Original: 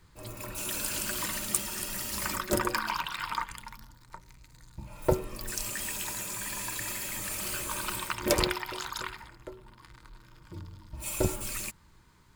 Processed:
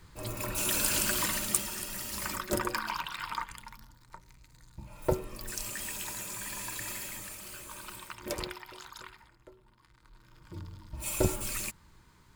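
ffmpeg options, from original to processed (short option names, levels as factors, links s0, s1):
-af "volume=5.96,afade=t=out:st=0.98:d=0.86:silence=0.421697,afade=t=out:st=6.98:d=0.42:silence=0.421697,afade=t=in:st=9.97:d=0.68:silence=0.281838"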